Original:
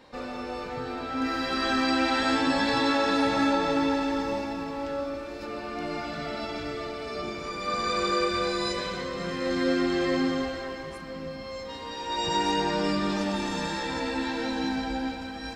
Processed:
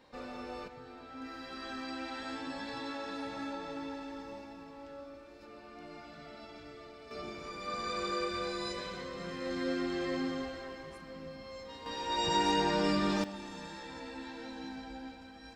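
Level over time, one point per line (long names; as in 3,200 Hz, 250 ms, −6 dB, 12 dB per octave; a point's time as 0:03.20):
−8 dB
from 0:00.68 −16 dB
from 0:07.11 −9 dB
from 0:11.86 −3 dB
from 0:13.24 −14.5 dB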